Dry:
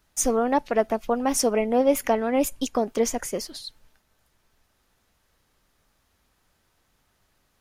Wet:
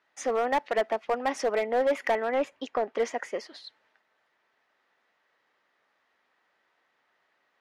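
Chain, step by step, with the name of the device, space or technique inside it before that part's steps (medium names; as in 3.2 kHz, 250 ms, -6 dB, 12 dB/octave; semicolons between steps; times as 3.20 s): megaphone (band-pass 470–2800 Hz; peaking EQ 1.9 kHz +7 dB 0.22 oct; hard clipper -19.5 dBFS, distortion -13 dB); 2.27–2.98 s: low-pass 3.6 kHz 6 dB/octave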